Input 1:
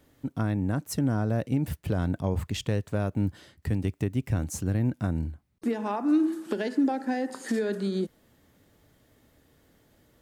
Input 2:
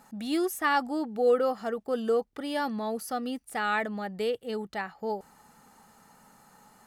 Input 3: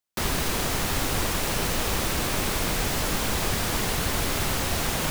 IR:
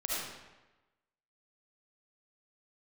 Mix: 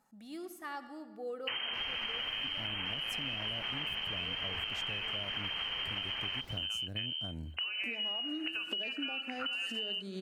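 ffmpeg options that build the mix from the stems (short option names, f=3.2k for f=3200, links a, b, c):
-filter_complex "[0:a]equalizer=f=640:w=4:g=7.5,acompressor=mode=upward:threshold=-28dB:ratio=2.5,adynamicequalizer=threshold=0.00447:dfrequency=1900:dqfactor=0.7:tfrequency=1900:tqfactor=0.7:attack=5:release=100:ratio=0.375:range=2.5:mode=boostabove:tftype=highshelf,adelay=1950,volume=0.5dB,asplit=2[a][b];[b]volume=-11dB[c];[1:a]volume=-18dB,asplit=2[d][e];[e]volume=-13.5dB[f];[2:a]afwtdn=0.0224,adelay=1300,volume=2.5dB,asplit=2[g][h];[h]volume=-21dB[i];[a][g]amix=inputs=2:normalize=0,lowpass=f=2.7k:t=q:w=0.5098,lowpass=f=2.7k:t=q:w=0.6013,lowpass=f=2.7k:t=q:w=0.9,lowpass=f=2.7k:t=q:w=2.563,afreqshift=-3200,acompressor=threshold=-24dB:ratio=6,volume=0dB[j];[3:a]atrim=start_sample=2205[k];[f][k]afir=irnorm=-1:irlink=0[l];[c][i]amix=inputs=2:normalize=0,aecho=0:1:254:1[m];[d][j][l][m]amix=inputs=4:normalize=0,acompressor=threshold=-35dB:ratio=6"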